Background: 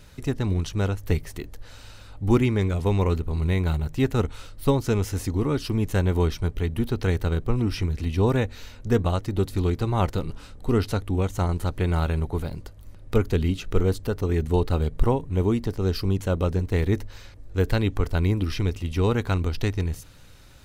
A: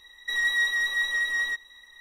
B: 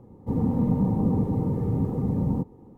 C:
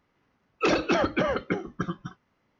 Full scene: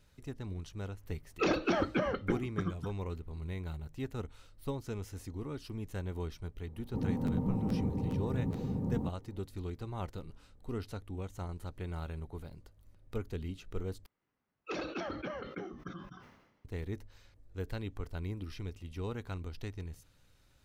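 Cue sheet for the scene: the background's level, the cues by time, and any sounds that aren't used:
background -16.5 dB
0.78 s: add C -8 dB + bass shelf 320 Hz +5 dB
6.66 s: add B -9.5 dB + crackling interface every 0.42 s repeat, from 0.60 s
14.06 s: replace with C -15.5 dB + decay stretcher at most 55 dB/s
not used: A

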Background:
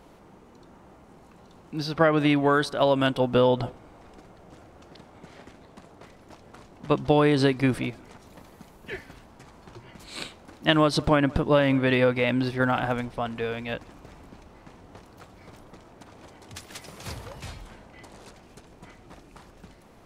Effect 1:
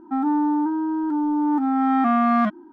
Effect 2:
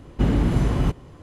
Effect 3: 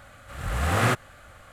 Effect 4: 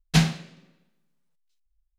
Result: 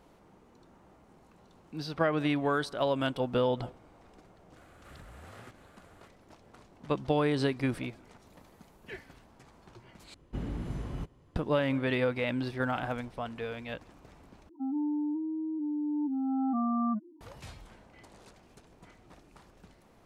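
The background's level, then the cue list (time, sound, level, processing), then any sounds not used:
background -7.5 dB
4.56 s: add 3 -11 dB + compression 16:1, threshold -36 dBFS
10.14 s: replace with 2 -16.5 dB
14.49 s: replace with 1 -10 dB + spectral contrast enhancement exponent 2.9
not used: 4

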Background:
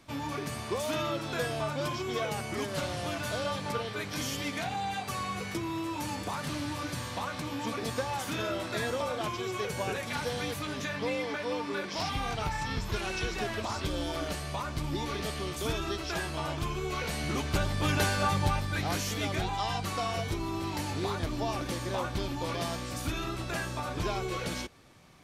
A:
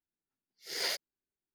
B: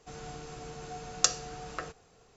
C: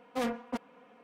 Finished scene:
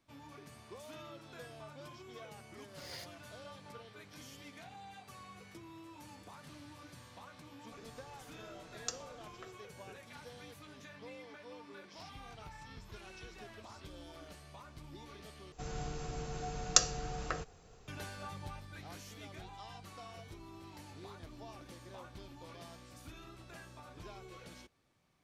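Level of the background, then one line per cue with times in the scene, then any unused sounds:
background -18 dB
2.09 s: add A -14.5 dB
7.64 s: add B -15.5 dB
15.52 s: replace with B -0.5 dB + bass shelf 110 Hz +10.5 dB
not used: C

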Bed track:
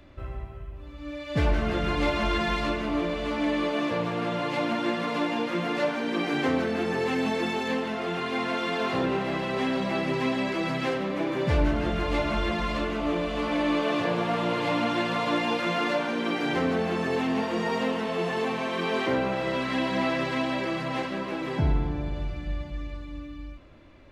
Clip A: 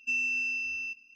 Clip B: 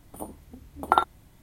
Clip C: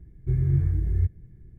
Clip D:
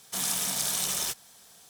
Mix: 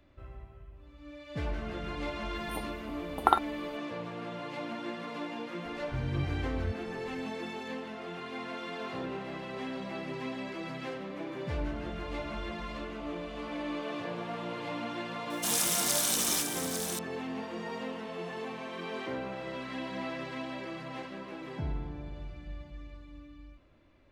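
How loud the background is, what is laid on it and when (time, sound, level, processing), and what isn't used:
bed track -11 dB
2.35 s: add B -3 dB
5.65 s: add C -11 dB
15.30 s: add D + delay 848 ms -8 dB
not used: A

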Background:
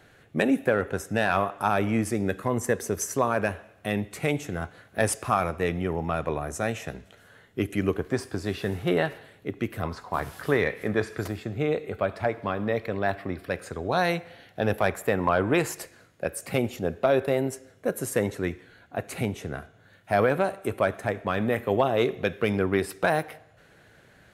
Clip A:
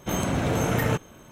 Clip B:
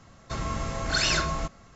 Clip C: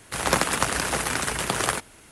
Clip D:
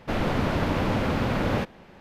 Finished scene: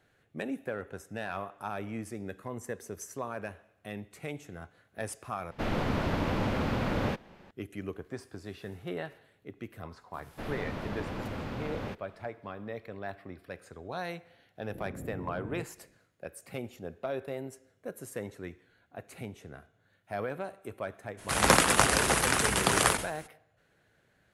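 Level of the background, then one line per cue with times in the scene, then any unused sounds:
background -13 dB
5.51 s: replace with D -5 dB
10.30 s: add D -12.5 dB
14.67 s: add A -16 dB + steep low-pass 560 Hz
21.17 s: add C -0.5 dB, fades 0.02 s + decay stretcher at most 130 dB/s
not used: B

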